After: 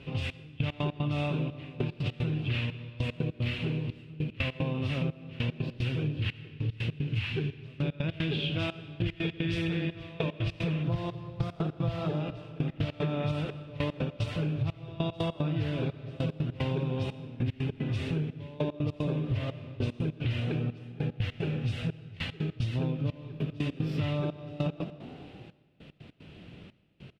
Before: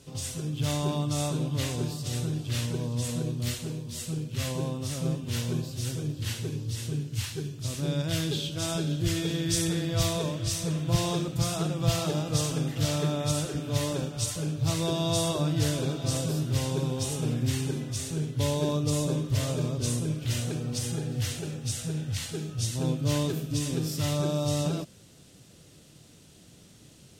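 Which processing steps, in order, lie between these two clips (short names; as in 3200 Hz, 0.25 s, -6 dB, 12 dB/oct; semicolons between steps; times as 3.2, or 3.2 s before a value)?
bell 2600 Hz +15 dB 0.69 oct, from 10.83 s +2.5 dB, from 12.2 s +9.5 dB; frequency-shifting echo 0.187 s, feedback 62%, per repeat +44 Hz, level -23 dB; step gate "xxx...x.x.xx" 150 bpm -24 dB; air absorption 420 m; digital reverb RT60 1.7 s, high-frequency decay 0.85×, pre-delay 35 ms, DRR 18.5 dB; compressor 12:1, threshold -33 dBFS, peak gain reduction 15 dB; gain +6.5 dB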